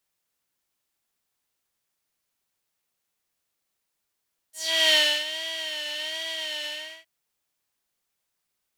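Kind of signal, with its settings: synth patch with vibrato D#5, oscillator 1 square, interval +7 st, sub -7 dB, noise -2 dB, filter bandpass, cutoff 2.5 kHz, Q 2.8, filter decay 0.18 s, filter sustain 15%, attack 393 ms, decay 0.32 s, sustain -14 dB, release 0.39 s, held 2.13 s, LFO 1.3 Hz, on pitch 72 cents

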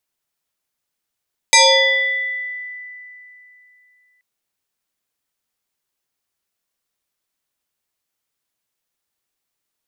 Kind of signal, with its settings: FM tone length 2.68 s, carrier 1.99 kHz, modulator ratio 0.73, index 4.4, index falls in 1.44 s exponential, decay 3.03 s, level -6 dB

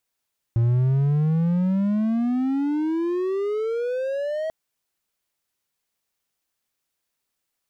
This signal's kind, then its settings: gliding synth tone triangle, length 3.94 s, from 114 Hz, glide +30 st, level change -8 dB, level -14 dB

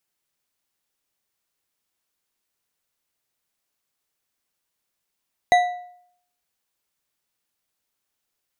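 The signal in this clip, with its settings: metal hit bar, lowest mode 716 Hz, decay 0.66 s, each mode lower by 7.5 dB, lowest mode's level -10 dB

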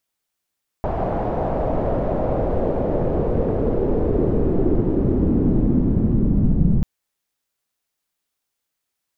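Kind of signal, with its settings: swept filtered noise pink, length 5.99 s lowpass, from 720 Hz, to 170 Hz, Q 2.5, linear, gain ramp +7 dB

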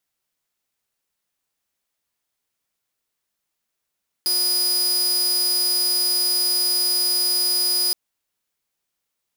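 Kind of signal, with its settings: tone saw 4.94 kHz -15.5 dBFS 3.67 s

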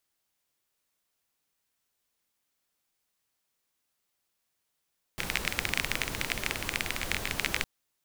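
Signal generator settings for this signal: rain from filtered ticks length 2.46 s, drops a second 21, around 2.2 kHz, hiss -2 dB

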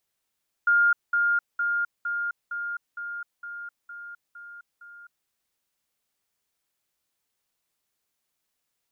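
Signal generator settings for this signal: level ladder 1.41 kHz -16.5 dBFS, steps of -3 dB, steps 10, 0.26 s 0.20 s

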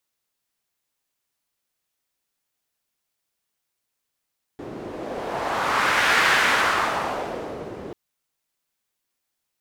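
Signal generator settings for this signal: wind-like swept noise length 3.34 s, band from 360 Hz, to 1.7 kHz, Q 1.5, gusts 1, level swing 17 dB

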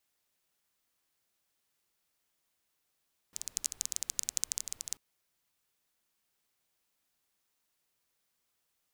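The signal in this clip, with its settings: rain from filtered ticks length 1.64 s, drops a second 16, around 6.8 kHz, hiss -23 dB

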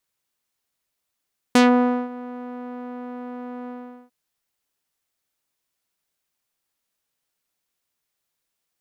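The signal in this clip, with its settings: synth note saw B3 12 dB/octave, low-pass 1.1 kHz, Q 0.9, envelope 3.5 oct, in 0.15 s, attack 4.1 ms, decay 0.53 s, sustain -21 dB, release 0.42 s, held 2.13 s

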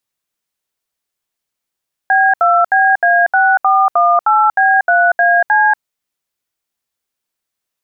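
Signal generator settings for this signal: DTMF "B2BA6418B3AC", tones 237 ms, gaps 72 ms, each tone -10.5 dBFS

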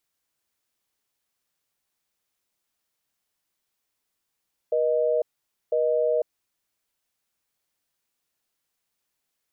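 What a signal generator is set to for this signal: call progress tone busy tone, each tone -22.5 dBFS 1.59 s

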